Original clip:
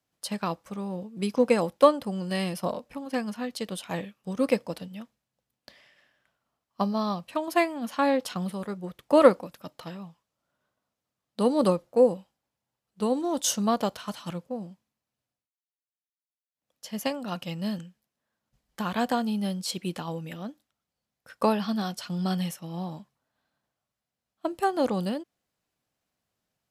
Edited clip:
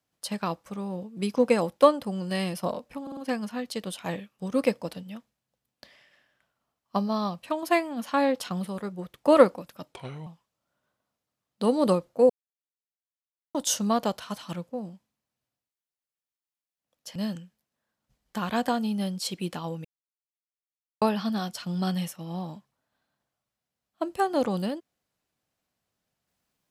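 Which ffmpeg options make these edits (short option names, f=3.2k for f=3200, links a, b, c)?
-filter_complex "[0:a]asplit=11[a][b][c][d][e][f][g][h][i][j][k];[a]atrim=end=3.072[l];[b]atrim=start=3.018:end=3.072[m];[c]atrim=start=3.018:end=3.072[n];[d]atrim=start=3.018:end=9.774[o];[e]atrim=start=9.77:end=10.04,asetpts=PTS-STARTPTS,asetrate=34398,aresample=44100,atrim=end_sample=15265,asetpts=PTS-STARTPTS[p];[f]atrim=start=10.036:end=12.07,asetpts=PTS-STARTPTS,afade=t=out:st=2.03:d=0.004:c=hsin[q];[g]atrim=start=12.07:end=13.32,asetpts=PTS-STARTPTS,volume=0[r];[h]atrim=start=13.32:end=16.932,asetpts=PTS-STARTPTS,afade=t=in:d=0.004:c=hsin[s];[i]atrim=start=17.588:end=20.28,asetpts=PTS-STARTPTS,afade=t=out:st=2.688:d=0.004:c=hsin[t];[j]atrim=start=20.28:end=21.45,asetpts=PTS-STARTPTS,volume=0[u];[k]atrim=start=21.45,asetpts=PTS-STARTPTS,afade=t=in:d=0.004:c=hsin[v];[l][m]acrossfade=d=0.004:c1=hsin:c2=hsin[w];[w][n]acrossfade=d=0.004:c1=hsin:c2=hsin[x];[x][o]acrossfade=d=0.004:c1=hsin:c2=hsin[y];[y][p]acrossfade=d=0.004:c1=hsin:c2=hsin[z];[q][r][s]concat=n=3:v=0:a=1[aa];[z][aa]acrossfade=d=0.004:c1=hsin:c2=hsin[ab];[t][u][v]concat=n=3:v=0:a=1[ac];[ab][ac]acrossfade=d=0.004:c1=hsin:c2=hsin"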